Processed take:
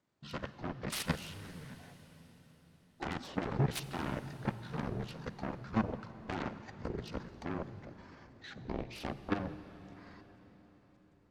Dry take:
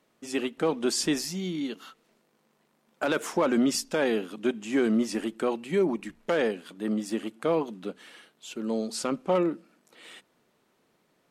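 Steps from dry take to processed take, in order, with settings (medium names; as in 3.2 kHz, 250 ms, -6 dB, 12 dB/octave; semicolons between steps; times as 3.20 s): rotating-head pitch shifter -10.5 st; Chebyshev shaper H 3 -25 dB, 5 -26 dB, 6 -26 dB, 7 -9 dB, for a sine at -15 dBFS; level held to a coarse grid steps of 11 dB; on a send: reverberation RT60 4.9 s, pre-delay 38 ms, DRR 12 dB; on the sum: trim -4.5 dB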